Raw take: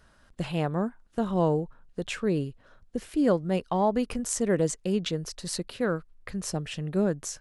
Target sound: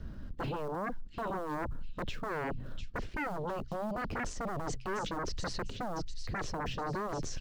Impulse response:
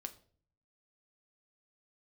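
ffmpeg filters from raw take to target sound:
-filter_complex "[0:a]lowpass=f=5.6k:w=0.5412,lowpass=f=5.6k:w=1.3066,bandreject=f=64.01:t=h:w=4,bandreject=f=128.02:t=h:w=4,areverse,acompressor=threshold=-32dB:ratio=12,areverse,alimiter=level_in=7dB:limit=-24dB:level=0:latency=1:release=50,volume=-7dB,acrossover=split=460|3000[a][b][c];[b]acompressor=threshold=-48dB:ratio=10[d];[a][d][c]amix=inputs=3:normalize=0,acrossover=split=330|2200[e][f][g];[e]aeval=exprs='0.0237*sin(PI/2*7.08*val(0)/0.0237)':c=same[h];[f]acrusher=bits=3:mode=log:mix=0:aa=0.000001[i];[g]aecho=1:1:699|1398|2097|2796:0.501|0.185|0.0686|0.0254[j];[h][i][j]amix=inputs=3:normalize=0"

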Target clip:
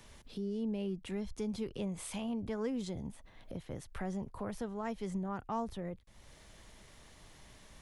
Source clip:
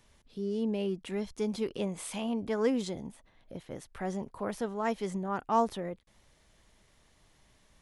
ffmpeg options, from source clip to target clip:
-filter_complex "[0:a]acrossover=split=130[a][b];[b]acompressor=threshold=-58dB:ratio=2[c];[a][c]amix=inputs=2:normalize=0,volume=7.5dB"

